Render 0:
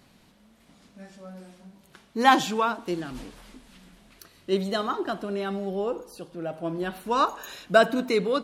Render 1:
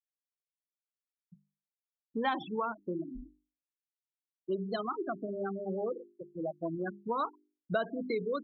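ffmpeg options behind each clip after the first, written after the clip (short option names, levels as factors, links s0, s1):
-af "afftfilt=real='re*gte(hypot(re,im),0.1)':imag='im*gte(hypot(re,im),0.1)':win_size=1024:overlap=0.75,bandreject=f=50:t=h:w=6,bandreject=f=100:t=h:w=6,bandreject=f=150:t=h:w=6,bandreject=f=200:t=h:w=6,bandreject=f=250:t=h:w=6,bandreject=f=300:t=h:w=6,bandreject=f=350:t=h:w=6,bandreject=f=400:t=h:w=6,acompressor=threshold=0.0224:ratio=3"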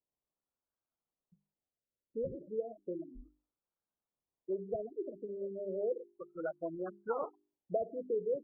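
-af "equalizer=f=125:t=o:w=1:g=-9,equalizer=f=250:t=o:w=1:g=-8,equalizer=f=500:t=o:w=1:g=8,equalizer=f=1000:t=o:w=1:g=-5,equalizer=f=2000:t=o:w=1:g=-8,acrusher=samples=20:mix=1:aa=0.000001:lfo=1:lforange=12:lforate=1,afftfilt=real='re*lt(b*sr/1024,590*pow(1700/590,0.5+0.5*sin(2*PI*0.33*pts/sr)))':imag='im*lt(b*sr/1024,590*pow(1700/590,0.5+0.5*sin(2*PI*0.33*pts/sr)))':win_size=1024:overlap=0.75,volume=0.75"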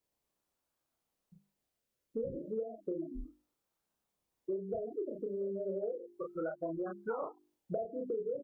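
-filter_complex "[0:a]asplit=2[s0][s1];[s1]adelay=31,volume=0.75[s2];[s0][s2]amix=inputs=2:normalize=0,acompressor=threshold=0.00891:ratio=6,volume=2.11"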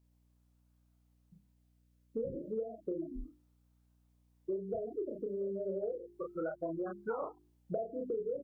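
-af "aeval=exprs='val(0)+0.000355*(sin(2*PI*60*n/s)+sin(2*PI*2*60*n/s)/2+sin(2*PI*3*60*n/s)/3+sin(2*PI*4*60*n/s)/4+sin(2*PI*5*60*n/s)/5)':c=same"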